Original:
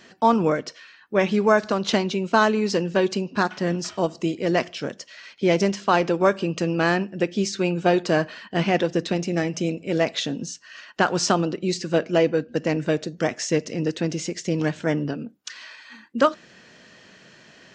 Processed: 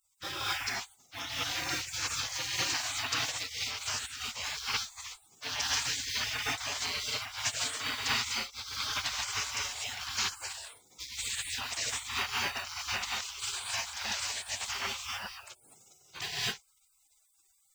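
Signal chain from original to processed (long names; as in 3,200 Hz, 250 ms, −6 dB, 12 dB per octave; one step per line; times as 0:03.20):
log-companded quantiser 8 bits
reverb whose tail is shaped and stops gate 270 ms rising, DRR −7.5 dB
gate on every frequency bin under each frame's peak −30 dB weak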